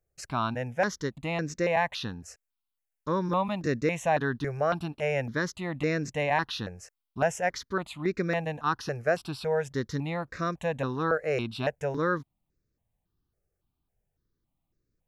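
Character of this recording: notches that jump at a steady rate 3.6 Hz 970–3100 Hz

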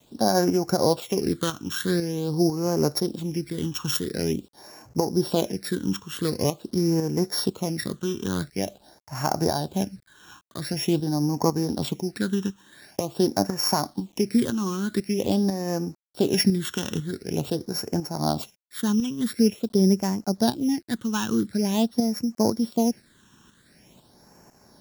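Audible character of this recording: a buzz of ramps at a fixed pitch in blocks of 8 samples; tremolo saw up 2 Hz, depth 55%; a quantiser's noise floor 10-bit, dither none; phasing stages 8, 0.46 Hz, lowest notch 630–3500 Hz

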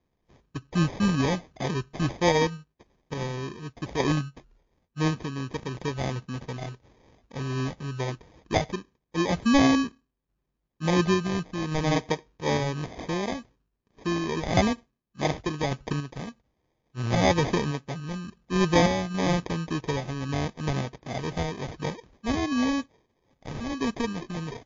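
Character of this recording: random-step tremolo; aliases and images of a low sample rate 1400 Hz, jitter 0%; MP3

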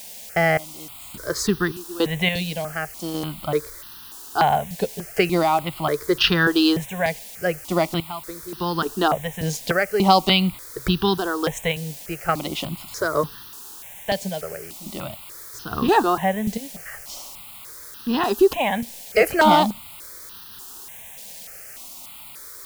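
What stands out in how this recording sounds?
random-step tremolo, depth 90%; a quantiser's noise floor 8-bit, dither triangular; notches that jump at a steady rate 3.4 Hz 340–2200 Hz

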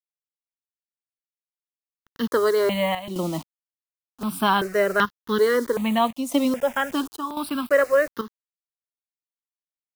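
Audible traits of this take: a quantiser's noise floor 6-bit, dither none; chopped level 0.95 Hz, depth 65%, duty 80%; notches that jump at a steady rate 2.6 Hz 440–2400 Hz

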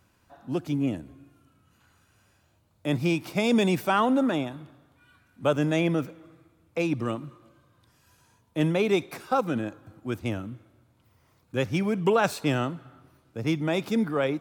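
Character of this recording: noise floor -65 dBFS; spectral tilt -5.5 dB/oct

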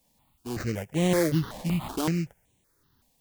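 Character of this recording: aliases and images of a low sample rate 2600 Hz, jitter 20%; tremolo triangle 1.8 Hz, depth 40%; a quantiser's noise floor 12-bit, dither triangular; notches that jump at a steady rate 5.3 Hz 370–4900 Hz

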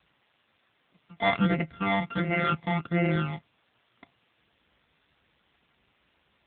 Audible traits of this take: a buzz of ramps at a fixed pitch in blocks of 64 samples; phasing stages 12, 1.4 Hz, lowest notch 450–1100 Hz; a quantiser's noise floor 10-bit, dither triangular; AMR-NB

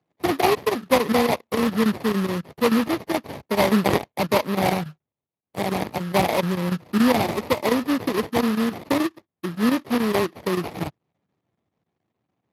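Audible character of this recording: chopped level 7 Hz, depth 65%, duty 85%; aliases and images of a low sample rate 1500 Hz, jitter 20%; Speex

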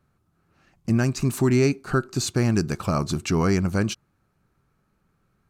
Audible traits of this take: noise floor -70 dBFS; spectral tilt -6.0 dB/oct

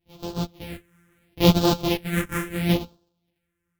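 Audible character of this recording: a buzz of ramps at a fixed pitch in blocks of 256 samples; phasing stages 4, 0.75 Hz, lowest notch 710–2000 Hz; random-step tremolo 2.6 Hz; a shimmering, thickened sound

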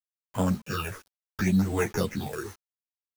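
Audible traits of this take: aliases and images of a low sample rate 4100 Hz, jitter 0%; phasing stages 6, 0.7 Hz, lowest notch 170–4600 Hz; a quantiser's noise floor 8-bit, dither none; a shimmering, thickened sound

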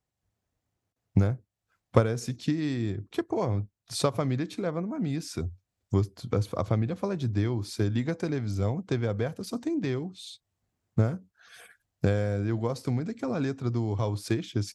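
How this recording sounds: noise floor -85 dBFS; spectral tilt -7.0 dB/oct

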